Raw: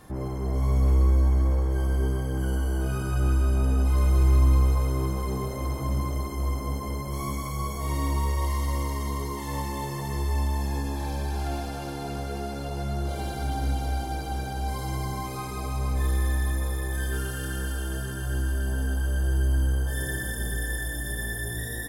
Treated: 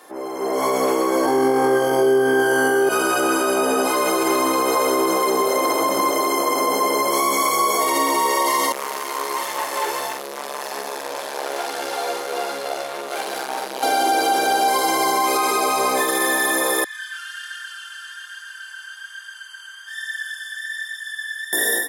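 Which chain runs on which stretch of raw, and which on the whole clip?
0:01.25–0:02.89: low-shelf EQ 450 Hz +7 dB + comb filter 2.5 ms, depth 45% + flutter between parallel walls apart 3.9 metres, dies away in 1.3 s
0:08.72–0:13.83: flanger 1.3 Hz, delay 0.4 ms, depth 2 ms, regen +58% + tube saturation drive 39 dB, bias 0.45 + double-tracking delay 45 ms −4 dB
0:16.84–0:21.53: Bessel high-pass filter 2,400 Hz, order 8 + flanger 1.2 Hz, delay 0.1 ms, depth 9.9 ms, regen −26% + head-to-tape spacing loss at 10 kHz 22 dB
whole clip: high-pass filter 360 Hz 24 dB per octave; brickwall limiter −30 dBFS; automatic gain control gain up to 13 dB; level +7 dB

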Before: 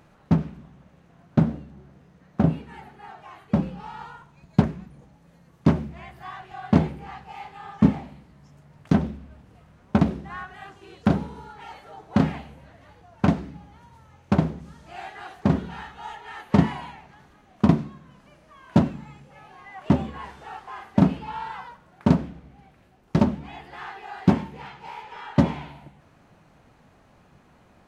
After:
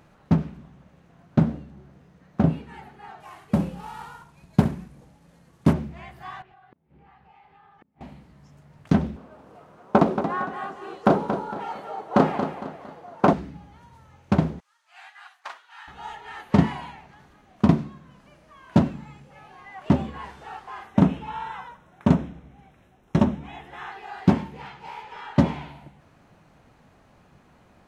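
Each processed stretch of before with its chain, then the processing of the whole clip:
0:03.20–0:05.73: variable-slope delta modulation 64 kbit/s + flutter between parallel walls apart 11.5 metres, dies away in 0.31 s
0:06.42–0:08.01: low-pass filter 3,000 Hz + gate with flip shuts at −17 dBFS, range −38 dB + downward compressor 5 to 1, threshold −53 dBFS
0:09.16–0:13.33: high-pass filter 170 Hz + flat-topped bell 680 Hz +9 dB 2.3 octaves + repeating echo 229 ms, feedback 37%, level −9 dB
0:14.60–0:15.88: high-pass filter 1,000 Hz 24 dB per octave + expander for the loud parts, over −57 dBFS
0:20.87–0:23.92: Butterworth band-reject 4,600 Hz, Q 4.4 + highs frequency-modulated by the lows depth 0.18 ms
whole clip: no processing

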